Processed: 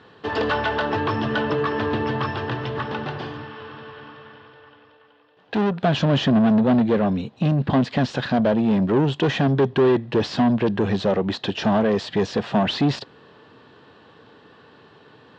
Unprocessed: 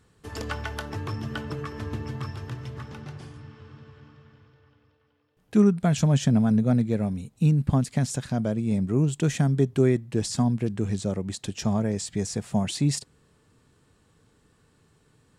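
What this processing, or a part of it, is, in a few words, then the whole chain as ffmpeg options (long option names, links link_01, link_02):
overdrive pedal into a guitar cabinet: -filter_complex "[0:a]asplit=2[link_01][link_02];[link_02]highpass=frequency=720:poles=1,volume=28dB,asoftclip=type=tanh:threshold=-9dB[link_03];[link_01][link_03]amix=inputs=2:normalize=0,lowpass=frequency=2900:poles=1,volume=-6dB,highpass=84,equalizer=frequency=160:width_type=q:width=4:gain=-3,equalizer=frequency=1300:width_type=q:width=4:gain=-5,equalizer=frequency=2200:width_type=q:width=4:gain=-9,lowpass=frequency=3900:width=0.5412,lowpass=frequency=3900:width=1.3066,asettb=1/sr,asplit=3[link_04][link_05][link_06];[link_04]atrim=end=3.444[link_07];[link_05]atrim=start=3.44:end=5.83,asetpts=PTS-STARTPTS,afade=type=in:duration=0.004:curve=qsin,afade=type=out:start_time=2.386:duration=0.004:curve=qsin,equalizer=frequency=120:width=0.33:gain=-6[link_08];[link_06]atrim=start=5.826[link_09];[link_07][link_08]acrossfade=duration=0.004:curve1=hsin:curve2=qsin[link_10];[link_10][link_09]acrossfade=duration=0.004:curve1=qsin:curve2=hsin"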